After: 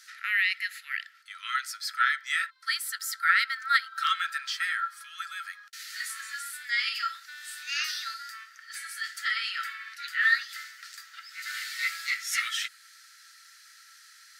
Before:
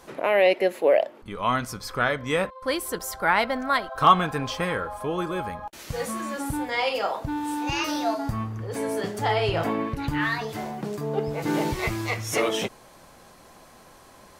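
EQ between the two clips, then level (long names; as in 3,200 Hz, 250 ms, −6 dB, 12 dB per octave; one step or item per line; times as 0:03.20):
dynamic equaliser 5,800 Hz, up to −6 dB, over −54 dBFS, Q 3.1
Chebyshev high-pass with heavy ripple 1,300 Hz, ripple 9 dB
+7.0 dB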